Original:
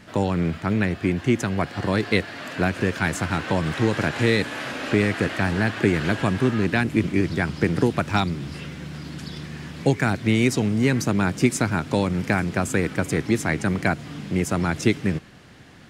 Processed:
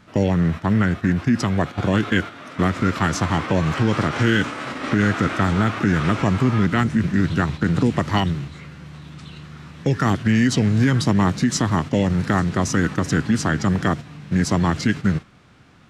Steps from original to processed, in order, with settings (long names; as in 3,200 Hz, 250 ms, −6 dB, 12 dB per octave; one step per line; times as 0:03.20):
brickwall limiter −12 dBFS, peak gain reduction 7 dB
noise gate −30 dBFS, range −8 dB
formants moved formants −4 semitones
level +4.5 dB